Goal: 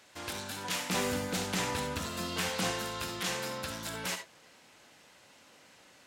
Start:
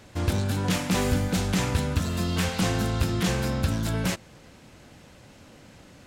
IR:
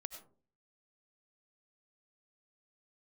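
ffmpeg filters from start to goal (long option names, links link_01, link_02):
-filter_complex "[0:a]asetnsamples=nb_out_samples=441:pad=0,asendcmd='0.9 highpass f 450;2.71 highpass f 940',highpass=frequency=1200:poles=1[link_01];[1:a]atrim=start_sample=2205,afade=type=out:start_time=0.21:duration=0.01,atrim=end_sample=9702,asetrate=66150,aresample=44100[link_02];[link_01][link_02]afir=irnorm=-1:irlink=0,volume=4.5dB"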